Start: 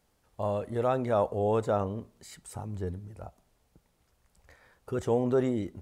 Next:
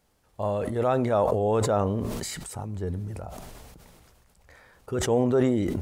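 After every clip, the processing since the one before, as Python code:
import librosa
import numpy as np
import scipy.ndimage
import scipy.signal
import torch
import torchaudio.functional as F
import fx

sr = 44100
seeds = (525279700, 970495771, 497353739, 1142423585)

y = fx.sustainer(x, sr, db_per_s=23.0)
y = F.gain(torch.from_numpy(y), 2.5).numpy()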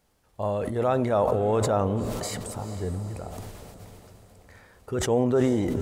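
y = fx.echo_diffused(x, sr, ms=453, feedback_pct=50, wet_db=-13.0)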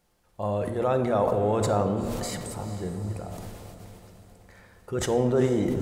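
y = fx.room_shoebox(x, sr, seeds[0], volume_m3=1900.0, walls='mixed', distance_m=0.87)
y = F.gain(torch.from_numpy(y), -1.5).numpy()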